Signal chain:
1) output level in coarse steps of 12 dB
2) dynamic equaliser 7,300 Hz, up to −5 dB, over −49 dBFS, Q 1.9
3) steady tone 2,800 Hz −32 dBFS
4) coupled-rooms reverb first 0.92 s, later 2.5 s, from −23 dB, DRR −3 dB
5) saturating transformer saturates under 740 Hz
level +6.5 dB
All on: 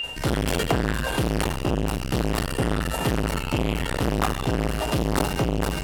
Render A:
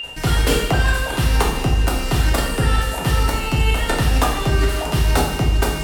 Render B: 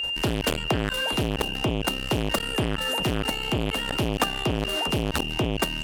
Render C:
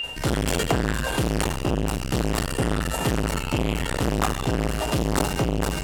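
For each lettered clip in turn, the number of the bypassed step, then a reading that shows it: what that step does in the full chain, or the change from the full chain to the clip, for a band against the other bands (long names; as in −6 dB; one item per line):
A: 5, change in crest factor −6.5 dB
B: 4, 4 kHz band +7.5 dB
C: 2, 8 kHz band +3.0 dB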